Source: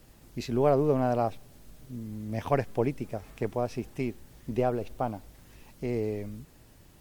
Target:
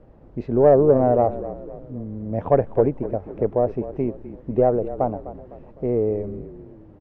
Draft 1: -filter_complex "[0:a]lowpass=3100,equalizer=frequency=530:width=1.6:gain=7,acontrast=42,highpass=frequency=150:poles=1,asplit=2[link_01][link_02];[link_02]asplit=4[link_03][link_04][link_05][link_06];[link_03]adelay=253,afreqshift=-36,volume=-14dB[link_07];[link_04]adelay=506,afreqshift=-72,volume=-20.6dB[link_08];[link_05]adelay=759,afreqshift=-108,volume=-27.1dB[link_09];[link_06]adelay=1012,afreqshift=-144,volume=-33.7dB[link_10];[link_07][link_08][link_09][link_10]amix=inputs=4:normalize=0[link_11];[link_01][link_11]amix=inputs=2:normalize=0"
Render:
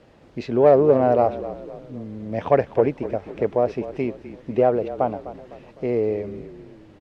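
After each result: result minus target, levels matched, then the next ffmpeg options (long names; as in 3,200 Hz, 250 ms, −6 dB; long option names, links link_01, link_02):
4,000 Hz band +16.5 dB; 125 Hz band −3.5 dB
-filter_complex "[0:a]lowpass=1000,equalizer=frequency=530:width=1.6:gain=7,acontrast=42,highpass=frequency=150:poles=1,asplit=2[link_01][link_02];[link_02]asplit=4[link_03][link_04][link_05][link_06];[link_03]adelay=253,afreqshift=-36,volume=-14dB[link_07];[link_04]adelay=506,afreqshift=-72,volume=-20.6dB[link_08];[link_05]adelay=759,afreqshift=-108,volume=-27.1dB[link_09];[link_06]adelay=1012,afreqshift=-144,volume=-33.7dB[link_10];[link_07][link_08][link_09][link_10]amix=inputs=4:normalize=0[link_11];[link_01][link_11]amix=inputs=2:normalize=0"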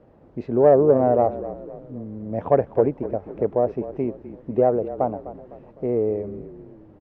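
125 Hz band −3.0 dB
-filter_complex "[0:a]lowpass=1000,equalizer=frequency=530:width=1.6:gain=7,acontrast=42,asplit=2[link_01][link_02];[link_02]asplit=4[link_03][link_04][link_05][link_06];[link_03]adelay=253,afreqshift=-36,volume=-14dB[link_07];[link_04]adelay=506,afreqshift=-72,volume=-20.6dB[link_08];[link_05]adelay=759,afreqshift=-108,volume=-27.1dB[link_09];[link_06]adelay=1012,afreqshift=-144,volume=-33.7dB[link_10];[link_07][link_08][link_09][link_10]amix=inputs=4:normalize=0[link_11];[link_01][link_11]amix=inputs=2:normalize=0"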